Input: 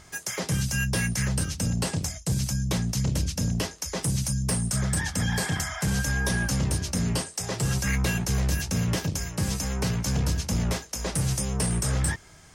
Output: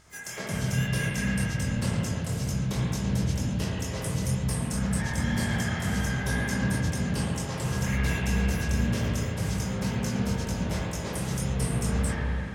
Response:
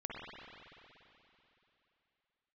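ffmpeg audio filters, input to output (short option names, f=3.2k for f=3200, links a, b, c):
-filter_complex "[0:a]flanger=delay=18.5:depth=7:speed=2,asplit=2[a][b];[b]asetrate=55563,aresample=44100,atempo=0.793701,volume=-11dB[c];[a][c]amix=inputs=2:normalize=0[d];[1:a]atrim=start_sample=2205[e];[d][e]afir=irnorm=-1:irlink=0,volume=1dB"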